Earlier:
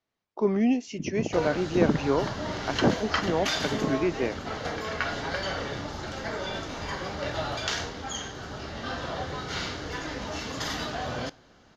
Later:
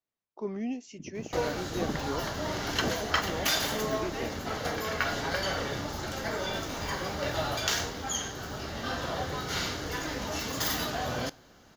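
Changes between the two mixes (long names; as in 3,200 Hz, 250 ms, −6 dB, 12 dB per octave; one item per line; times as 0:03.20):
speech −10.5 dB
master: remove low-pass filter 5,500 Hz 12 dB per octave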